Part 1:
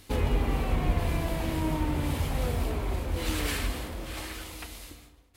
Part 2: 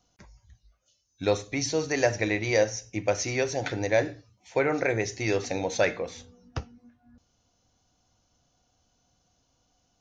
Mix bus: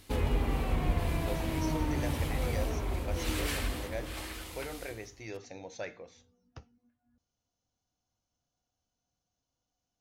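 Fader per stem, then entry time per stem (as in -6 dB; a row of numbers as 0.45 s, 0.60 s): -3.0 dB, -16.0 dB; 0.00 s, 0.00 s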